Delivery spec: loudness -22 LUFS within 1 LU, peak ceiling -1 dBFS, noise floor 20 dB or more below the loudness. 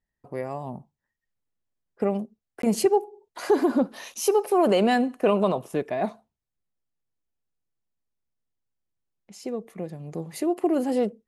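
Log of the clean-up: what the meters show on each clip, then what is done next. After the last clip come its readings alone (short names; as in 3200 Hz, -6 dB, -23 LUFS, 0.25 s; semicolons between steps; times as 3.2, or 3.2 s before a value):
dropouts 1; longest dropout 13 ms; loudness -25.0 LUFS; peak -10.0 dBFS; loudness target -22.0 LUFS
-> interpolate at 2.62, 13 ms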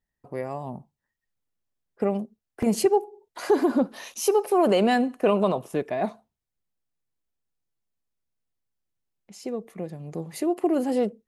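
dropouts 0; loudness -25.0 LUFS; peak -10.0 dBFS; loudness target -22.0 LUFS
-> gain +3 dB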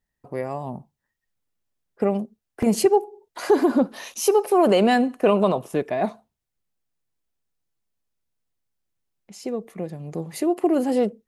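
loudness -22.0 LUFS; peak -7.0 dBFS; noise floor -82 dBFS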